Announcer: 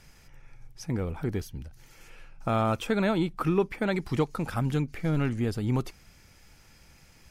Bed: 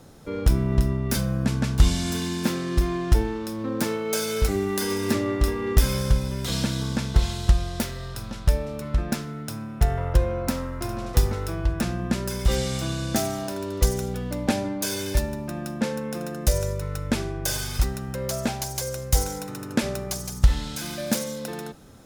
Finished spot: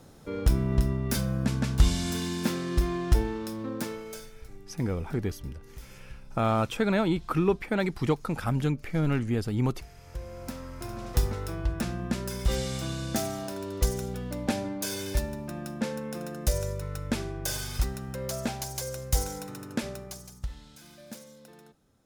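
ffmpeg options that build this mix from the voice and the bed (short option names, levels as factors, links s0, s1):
-filter_complex "[0:a]adelay=3900,volume=1.06[s0];[1:a]volume=8.41,afade=t=out:st=3.48:d=0.83:silence=0.0668344,afade=t=in:st=10:d=1.23:silence=0.0794328,afade=t=out:st=19.46:d=1.02:silence=0.199526[s1];[s0][s1]amix=inputs=2:normalize=0"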